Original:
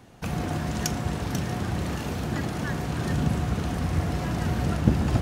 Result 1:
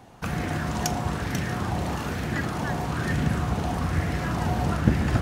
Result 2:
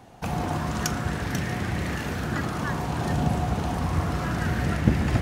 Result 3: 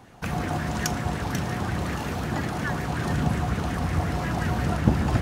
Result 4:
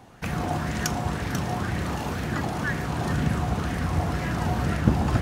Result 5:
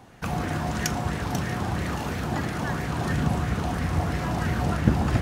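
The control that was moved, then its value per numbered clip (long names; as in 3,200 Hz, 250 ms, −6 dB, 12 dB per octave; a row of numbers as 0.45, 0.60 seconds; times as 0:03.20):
auto-filter bell, speed: 1.1, 0.3, 5.5, 2, 3 Hertz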